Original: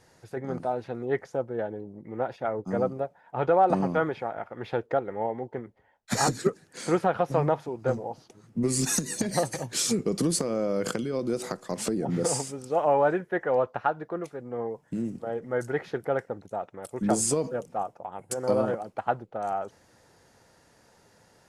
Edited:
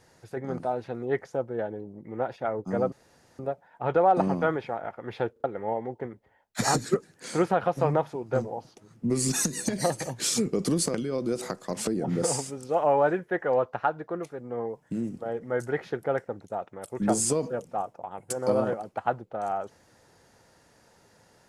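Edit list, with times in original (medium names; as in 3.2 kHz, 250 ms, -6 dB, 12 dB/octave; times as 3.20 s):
2.92 s: insert room tone 0.47 s
4.85 s: stutter in place 0.04 s, 3 plays
10.47–10.95 s: delete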